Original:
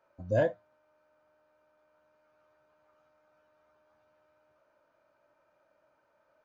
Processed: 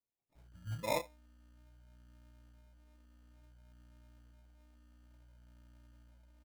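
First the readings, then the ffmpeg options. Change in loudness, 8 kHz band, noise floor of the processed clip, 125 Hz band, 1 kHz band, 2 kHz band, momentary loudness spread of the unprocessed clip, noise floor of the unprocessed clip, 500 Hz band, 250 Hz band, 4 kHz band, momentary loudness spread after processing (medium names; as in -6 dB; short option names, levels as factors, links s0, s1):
-9.5 dB, no reading, -82 dBFS, -7.0 dB, +1.5 dB, -4.5 dB, 3 LU, -72 dBFS, -10.0 dB, -8.5 dB, +9.0 dB, 16 LU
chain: -filter_complex "[0:a]aeval=exprs='val(0)+0.00224*(sin(2*PI*60*n/s)+sin(2*PI*2*60*n/s)/2+sin(2*PI*3*60*n/s)/3+sin(2*PI*4*60*n/s)/4+sin(2*PI*5*60*n/s)/5)':c=same,flanger=delay=16.5:depth=4:speed=0.57,acrossover=split=170|4000[s0][s1][s2];[s0]adelay=350[s3];[s1]adelay=520[s4];[s3][s4][s2]amix=inputs=3:normalize=0,acrusher=samples=29:mix=1:aa=0.000001,volume=0.562"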